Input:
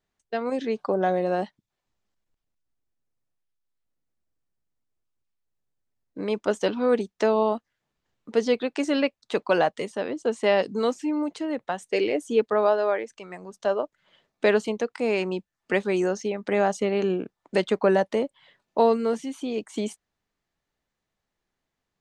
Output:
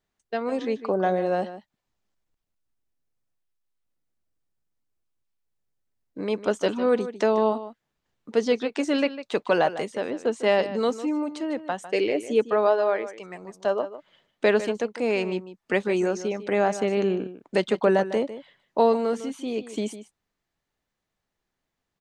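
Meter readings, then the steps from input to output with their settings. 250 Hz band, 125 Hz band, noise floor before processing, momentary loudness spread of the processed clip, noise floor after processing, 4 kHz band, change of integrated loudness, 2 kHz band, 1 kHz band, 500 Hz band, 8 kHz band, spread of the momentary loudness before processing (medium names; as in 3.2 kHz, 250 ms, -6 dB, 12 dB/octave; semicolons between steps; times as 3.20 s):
0.0 dB, 0.0 dB, -84 dBFS, 10 LU, -83 dBFS, 0.0 dB, 0.0 dB, 0.0 dB, 0.0 dB, +0.5 dB, 0.0 dB, 9 LU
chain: echo from a far wall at 26 m, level -13 dB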